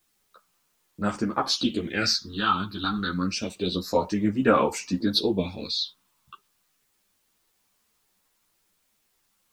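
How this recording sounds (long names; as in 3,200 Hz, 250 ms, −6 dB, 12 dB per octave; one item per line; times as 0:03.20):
phaser sweep stages 6, 0.28 Hz, lowest notch 520–4,200 Hz
a quantiser's noise floor 12 bits, dither triangular
a shimmering, thickened sound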